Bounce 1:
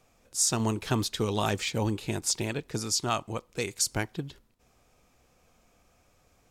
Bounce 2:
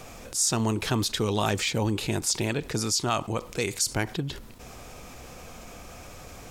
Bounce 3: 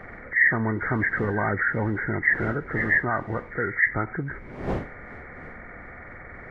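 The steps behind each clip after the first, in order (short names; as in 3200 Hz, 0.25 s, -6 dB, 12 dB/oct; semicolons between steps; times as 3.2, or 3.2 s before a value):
fast leveller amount 50%
nonlinear frequency compression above 1200 Hz 4:1; wind noise 460 Hz -40 dBFS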